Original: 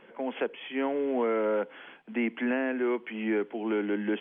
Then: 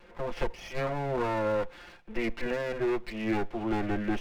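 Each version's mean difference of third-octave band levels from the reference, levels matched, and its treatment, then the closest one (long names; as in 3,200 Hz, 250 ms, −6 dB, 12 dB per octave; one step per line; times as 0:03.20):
8.5 dB: lower of the sound and its delayed copy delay 5.7 ms
low-shelf EQ 61 Hz +12 dB
notch filter 3,100 Hz, Q 17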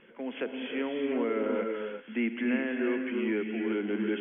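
3.5 dB: parametric band 800 Hz −10.5 dB 1.3 octaves
reverb whose tail is shaped and stops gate 390 ms rising, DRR 3 dB
downsampling to 8,000 Hz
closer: second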